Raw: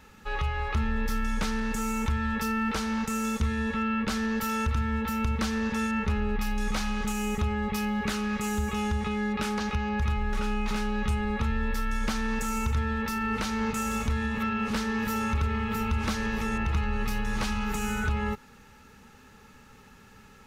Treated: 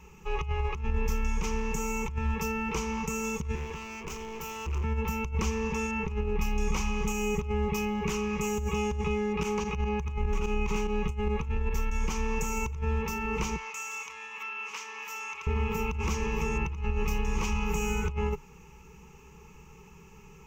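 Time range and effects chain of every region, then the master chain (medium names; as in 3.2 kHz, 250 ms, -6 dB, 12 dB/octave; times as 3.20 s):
3.55–4.84 s: hard clipper -33.5 dBFS + band-stop 210 Hz, Q 5.4
9.43–11.99 s: band-stop 5.2 kHz, Q 18 + volume shaper 146 bpm, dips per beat 2, -10 dB, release 60 ms
13.56–15.47 s: high-pass 1.3 kHz + treble shelf 9.3 kHz -9 dB
whole clip: rippled EQ curve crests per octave 0.75, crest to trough 16 dB; compressor with a negative ratio -26 dBFS, ratio -0.5; bass shelf 380 Hz +6.5 dB; trim -6 dB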